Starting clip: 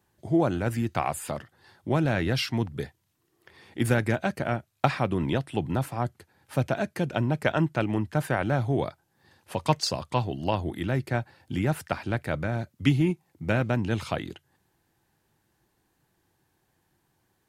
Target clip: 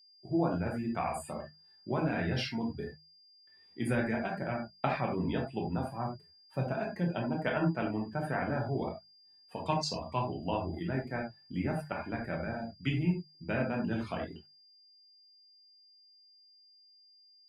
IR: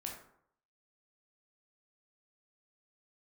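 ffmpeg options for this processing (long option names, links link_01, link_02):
-filter_complex "[0:a]flanger=delay=4.2:depth=1.1:regen=-44:speed=1.9:shape=sinusoidal,agate=range=-33dB:threshold=-60dB:ratio=3:detection=peak[link_01];[1:a]atrim=start_sample=2205,atrim=end_sample=4410[link_02];[link_01][link_02]afir=irnorm=-1:irlink=0,afftdn=noise_reduction=16:noise_floor=-46,aeval=exprs='val(0)+0.00112*sin(2*PI*4800*n/s)':channel_layout=same,bandreject=frequency=50:width_type=h:width=6,bandreject=frequency=100:width_type=h:width=6,bandreject=frequency=150:width_type=h:width=6,bandreject=frequency=200:width_type=h:width=6"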